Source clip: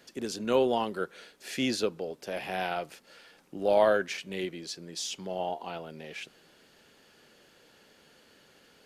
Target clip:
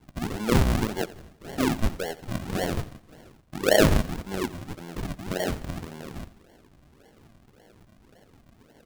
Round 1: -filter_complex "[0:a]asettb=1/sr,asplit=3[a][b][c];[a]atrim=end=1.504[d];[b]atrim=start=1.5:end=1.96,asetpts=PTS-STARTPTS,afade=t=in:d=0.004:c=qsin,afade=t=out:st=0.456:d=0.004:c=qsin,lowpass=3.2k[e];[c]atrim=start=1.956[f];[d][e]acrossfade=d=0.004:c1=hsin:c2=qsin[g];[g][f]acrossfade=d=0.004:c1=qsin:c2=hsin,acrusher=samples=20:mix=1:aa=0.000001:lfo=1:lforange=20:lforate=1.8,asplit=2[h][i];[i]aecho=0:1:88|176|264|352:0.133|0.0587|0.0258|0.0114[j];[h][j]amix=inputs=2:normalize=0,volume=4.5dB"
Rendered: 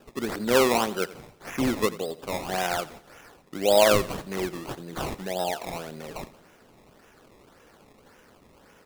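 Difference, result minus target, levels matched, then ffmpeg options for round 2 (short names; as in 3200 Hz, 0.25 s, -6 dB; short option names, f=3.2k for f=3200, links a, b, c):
decimation with a swept rate: distortion -29 dB
-filter_complex "[0:a]asettb=1/sr,asplit=3[a][b][c];[a]atrim=end=1.504[d];[b]atrim=start=1.5:end=1.96,asetpts=PTS-STARTPTS,afade=t=in:d=0.004:c=qsin,afade=t=out:st=0.456:d=0.004:c=qsin,lowpass=3.2k[e];[c]atrim=start=1.956[f];[d][e]acrossfade=d=0.004:c1=hsin:c2=qsin[g];[g][f]acrossfade=d=0.004:c1=qsin:c2=hsin,acrusher=samples=69:mix=1:aa=0.000001:lfo=1:lforange=69:lforate=1.8,asplit=2[h][i];[i]aecho=0:1:88|176|264|352:0.133|0.0587|0.0258|0.0114[j];[h][j]amix=inputs=2:normalize=0,volume=4.5dB"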